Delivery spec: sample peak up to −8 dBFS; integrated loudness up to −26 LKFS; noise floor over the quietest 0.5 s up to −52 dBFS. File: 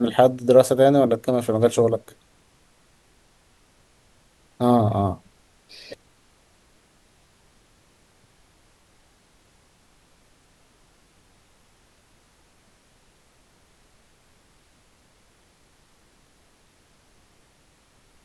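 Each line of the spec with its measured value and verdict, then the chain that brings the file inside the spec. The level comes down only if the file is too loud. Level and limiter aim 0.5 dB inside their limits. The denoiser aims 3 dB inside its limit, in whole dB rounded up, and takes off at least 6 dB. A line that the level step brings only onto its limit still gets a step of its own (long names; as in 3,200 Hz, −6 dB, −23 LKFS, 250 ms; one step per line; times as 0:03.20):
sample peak −2.5 dBFS: out of spec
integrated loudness −19.5 LKFS: out of spec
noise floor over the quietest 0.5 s −59 dBFS: in spec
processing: level −7 dB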